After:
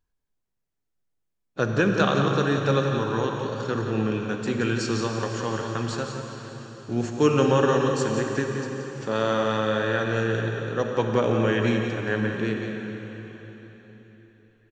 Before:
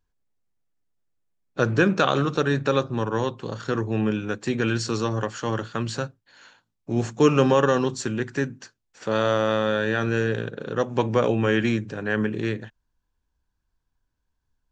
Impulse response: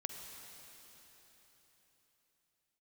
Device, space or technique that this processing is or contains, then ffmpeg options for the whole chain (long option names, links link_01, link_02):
cave: -filter_complex "[0:a]aecho=1:1:175:0.376[link_01];[1:a]atrim=start_sample=2205[link_02];[link_01][link_02]afir=irnorm=-1:irlink=0"